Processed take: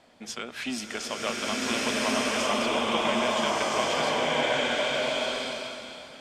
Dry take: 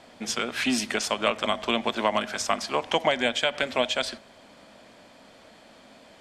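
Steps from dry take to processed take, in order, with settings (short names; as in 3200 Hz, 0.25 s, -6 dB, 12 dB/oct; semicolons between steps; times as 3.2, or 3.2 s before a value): bloom reverb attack 1.4 s, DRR -7.5 dB; gain -7.5 dB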